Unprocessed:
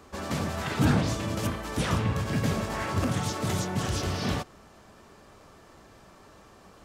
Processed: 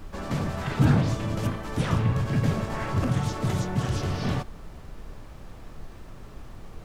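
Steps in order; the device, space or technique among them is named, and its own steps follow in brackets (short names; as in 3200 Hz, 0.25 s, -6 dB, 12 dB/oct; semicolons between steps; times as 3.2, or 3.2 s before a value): car interior (bell 130 Hz +7 dB 0.58 oct; high shelf 3600 Hz -7 dB; brown noise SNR 12 dB)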